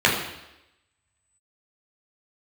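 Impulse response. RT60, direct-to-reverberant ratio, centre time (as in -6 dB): 0.90 s, -4.5 dB, 40 ms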